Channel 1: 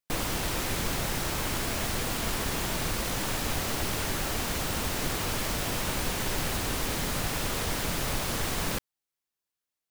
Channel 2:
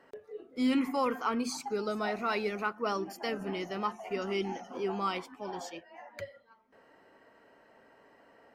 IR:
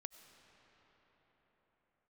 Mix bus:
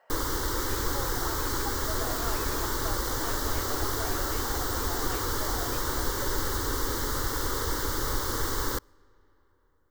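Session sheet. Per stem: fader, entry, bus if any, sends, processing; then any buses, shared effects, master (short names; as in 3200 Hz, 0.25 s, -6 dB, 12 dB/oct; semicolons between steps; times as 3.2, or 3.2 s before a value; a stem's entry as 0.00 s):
+3.0 dB, 0.00 s, send -15.5 dB, bell 10000 Hz -8.5 dB 0.45 oct; fixed phaser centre 680 Hz, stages 6
-3.5 dB, 0.00 s, no send, limiter -31 dBFS, peak gain reduction 11.5 dB; resonant low shelf 440 Hz -13.5 dB, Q 3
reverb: on, pre-delay 55 ms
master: dry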